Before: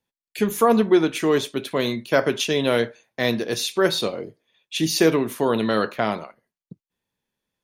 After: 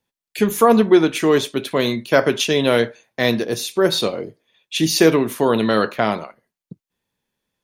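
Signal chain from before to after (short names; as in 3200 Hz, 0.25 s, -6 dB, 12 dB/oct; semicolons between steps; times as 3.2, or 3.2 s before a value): 3.45–3.92 bell 2800 Hz -6.5 dB 2.8 oct; gain +4 dB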